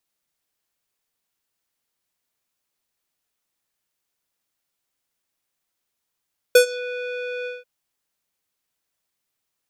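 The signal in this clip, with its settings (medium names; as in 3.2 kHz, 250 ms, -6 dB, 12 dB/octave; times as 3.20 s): synth note square B4 12 dB/octave, low-pass 2.6 kHz, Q 2.1, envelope 2.5 oct, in 0.26 s, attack 5.7 ms, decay 0.10 s, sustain -21 dB, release 0.18 s, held 0.91 s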